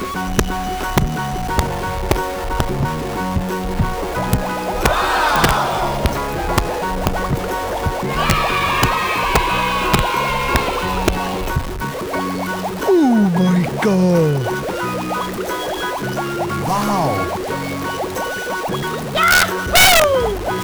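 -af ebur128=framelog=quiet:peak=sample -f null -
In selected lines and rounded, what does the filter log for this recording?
Integrated loudness:
  I:         -17.8 LUFS
  Threshold: -27.8 LUFS
Loudness range:
  LRA:         4.1 LU
  Threshold: -38.2 LUFS
  LRA low:   -20.8 LUFS
  LRA high:  -16.7 LUFS
Sample peak:
  Peak:       -5.2 dBFS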